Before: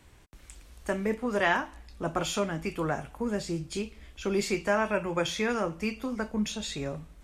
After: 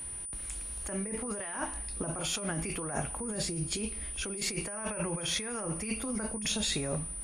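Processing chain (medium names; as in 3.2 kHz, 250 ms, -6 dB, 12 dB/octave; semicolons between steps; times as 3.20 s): compressor with a negative ratio -36 dBFS, ratio -1; whistle 9.4 kHz -38 dBFS; pre-echo 42 ms -21 dB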